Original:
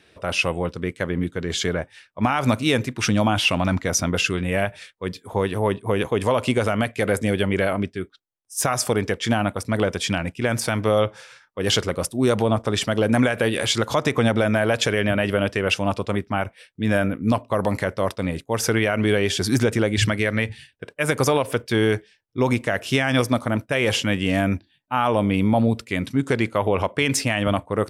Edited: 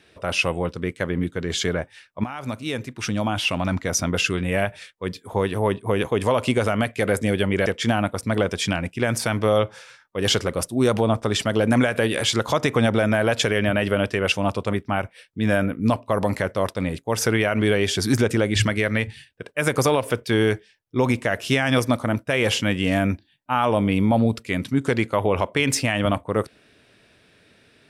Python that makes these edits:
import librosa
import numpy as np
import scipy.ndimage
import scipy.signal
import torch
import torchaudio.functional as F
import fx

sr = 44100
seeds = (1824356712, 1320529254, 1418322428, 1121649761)

y = fx.edit(x, sr, fx.fade_in_from(start_s=2.24, length_s=2.07, floor_db=-13.0),
    fx.cut(start_s=7.66, length_s=1.42), tone=tone)